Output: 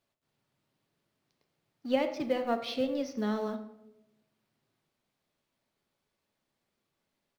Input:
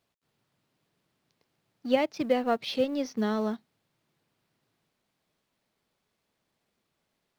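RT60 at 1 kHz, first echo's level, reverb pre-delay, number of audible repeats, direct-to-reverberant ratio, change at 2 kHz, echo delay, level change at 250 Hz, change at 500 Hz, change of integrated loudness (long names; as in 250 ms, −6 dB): 0.75 s, −17.5 dB, 3 ms, 1, 6.5 dB, −4.0 dB, 84 ms, −3.5 dB, −3.5 dB, −3.5 dB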